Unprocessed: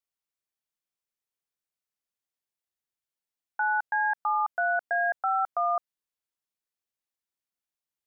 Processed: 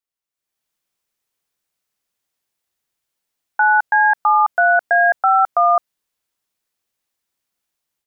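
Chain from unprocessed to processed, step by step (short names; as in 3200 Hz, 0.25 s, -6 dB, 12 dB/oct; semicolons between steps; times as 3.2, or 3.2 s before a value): AGC gain up to 12.5 dB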